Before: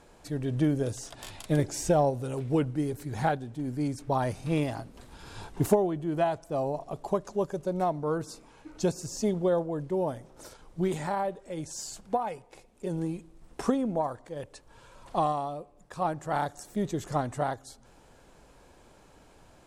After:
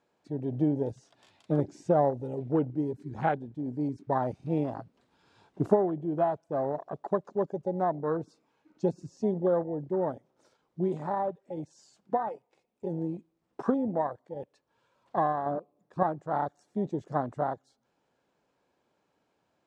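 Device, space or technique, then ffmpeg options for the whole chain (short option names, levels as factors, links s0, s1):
over-cleaned archive recording: -filter_complex "[0:a]highpass=150,lowpass=5500,afwtdn=0.0224,asettb=1/sr,asplit=3[s0][s1][s2];[s0]atrim=end=15.464[s3];[s1]atrim=start=15.46:end=16.03,asetpts=PTS-STARTPTS,afade=t=in:d=0.004:c=qsin,afade=t=out:st=0.566:d=0.004:c=qsin,equalizer=f=260:w=0.4:g=9.5[s4];[s2]atrim=start=16.026[s5];[s3][s4]acrossfade=d=0.004:c1=hsin:c2=qsin[s6];[s6][s5]acrossfade=d=0.004:c1=qsin:c2=hsin"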